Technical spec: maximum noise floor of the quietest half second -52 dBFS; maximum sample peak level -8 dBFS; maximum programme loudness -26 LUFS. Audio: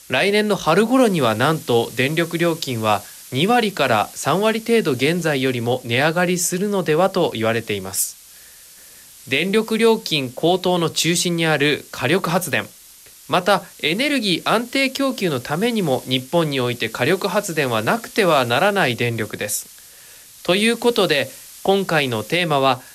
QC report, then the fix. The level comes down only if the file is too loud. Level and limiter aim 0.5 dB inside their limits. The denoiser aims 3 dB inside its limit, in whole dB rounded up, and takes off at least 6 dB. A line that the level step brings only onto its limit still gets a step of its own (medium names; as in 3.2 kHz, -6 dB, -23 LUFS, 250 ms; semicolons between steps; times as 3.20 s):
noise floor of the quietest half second -45 dBFS: fail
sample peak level -5.0 dBFS: fail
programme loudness -19.0 LUFS: fail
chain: trim -7.5 dB